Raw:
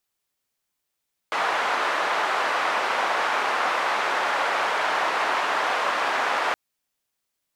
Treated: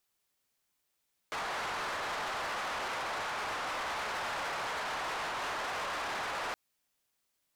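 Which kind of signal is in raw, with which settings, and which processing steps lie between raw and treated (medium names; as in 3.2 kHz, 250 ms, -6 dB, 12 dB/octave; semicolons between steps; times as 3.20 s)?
noise band 830–1100 Hz, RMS -24 dBFS 5.22 s
peak limiter -20.5 dBFS; saturation -34 dBFS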